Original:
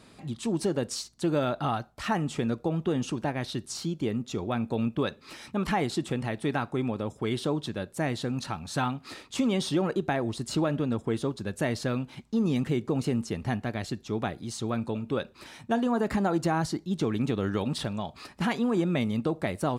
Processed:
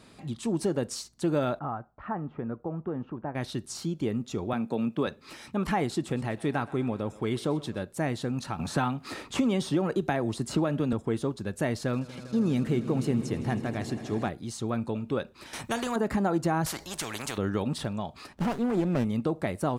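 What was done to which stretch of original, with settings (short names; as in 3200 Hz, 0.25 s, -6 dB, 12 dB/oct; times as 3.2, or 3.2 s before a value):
1.59–3.35 ladder low-pass 1700 Hz, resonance 25%
4.53–5.07 HPF 140 Hz 24 dB/oct
5.91–7.85 thinning echo 0.126 s, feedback 62%, level -18 dB
8.59–10.93 three-band squash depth 70%
11.77–14.29 swelling echo 80 ms, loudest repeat 5, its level -18 dB
15.53–15.96 spectral compressor 2:1
16.66–17.38 spectral compressor 4:1
18.33–19.05 running maximum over 17 samples
whole clip: dynamic EQ 3700 Hz, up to -4 dB, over -47 dBFS, Q 0.85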